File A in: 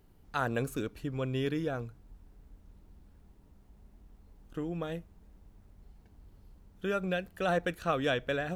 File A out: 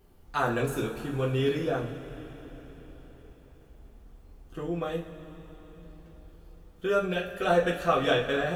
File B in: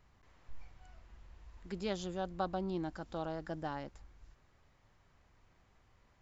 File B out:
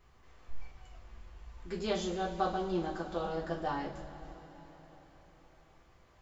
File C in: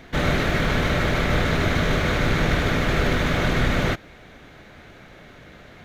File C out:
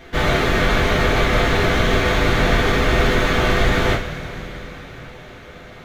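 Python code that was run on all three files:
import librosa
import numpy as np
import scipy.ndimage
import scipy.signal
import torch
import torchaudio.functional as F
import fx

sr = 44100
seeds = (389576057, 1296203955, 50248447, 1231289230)

y = fx.rev_double_slope(x, sr, seeds[0], early_s=0.29, late_s=4.7, knee_db=-20, drr_db=-4.0)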